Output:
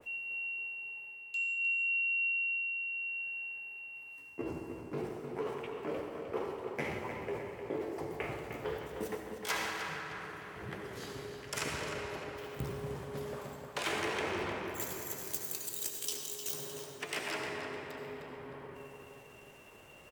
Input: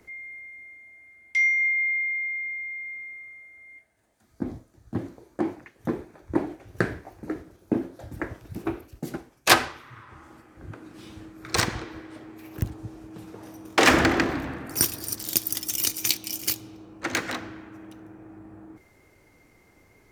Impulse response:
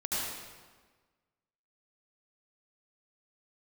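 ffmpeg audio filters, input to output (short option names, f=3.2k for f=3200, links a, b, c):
-filter_complex "[0:a]lowshelf=f=220:g=-8,areverse,acompressor=threshold=-39dB:ratio=4,areverse,asetrate=57191,aresample=44100,atempo=0.771105,asplit=2[a][b];[b]adelay=306,lowpass=f=4.4k:p=1,volume=-6dB,asplit=2[c][d];[d]adelay=306,lowpass=f=4.4k:p=1,volume=0.52,asplit=2[e][f];[f]adelay=306,lowpass=f=4.4k:p=1,volume=0.52,asplit=2[g][h];[h]adelay=306,lowpass=f=4.4k:p=1,volume=0.52,asplit=2[i][j];[j]adelay=306,lowpass=f=4.4k:p=1,volume=0.52,asplit=2[k][l];[l]adelay=306,lowpass=f=4.4k:p=1,volume=0.52[m];[a][c][e][g][i][k][m]amix=inputs=7:normalize=0,asplit=2[n][o];[1:a]atrim=start_sample=2205[p];[o][p]afir=irnorm=-1:irlink=0,volume=-8dB[q];[n][q]amix=inputs=2:normalize=0,adynamicequalizer=threshold=0.00447:dfrequency=2100:dqfactor=0.7:tfrequency=2100:tqfactor=0.7:attack=5:release=100:ratio=0.375:range=2:mode=cutabove:tftype=highshelf"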